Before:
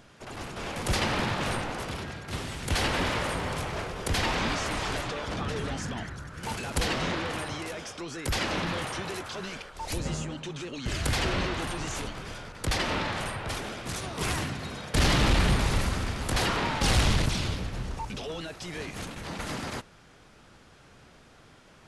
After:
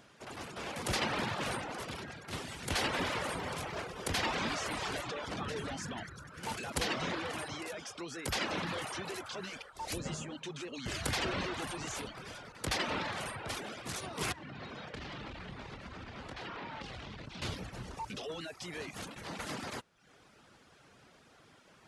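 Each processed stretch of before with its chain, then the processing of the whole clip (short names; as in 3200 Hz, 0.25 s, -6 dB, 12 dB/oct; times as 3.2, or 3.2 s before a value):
14.32–17.42 compressor 12:1, threshold -33 dBFS + LPF 3700 Hz + doubler 28 ms -12.5 dB
whole clip: reverb removal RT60 0.63 s; HPF 150 Hz 6 dB/oct; gain -3.5 dB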